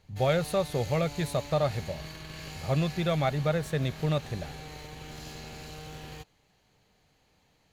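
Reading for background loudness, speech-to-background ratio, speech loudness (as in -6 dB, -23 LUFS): -42.5 LUFS, 13.0 dB, -29.5 LUFS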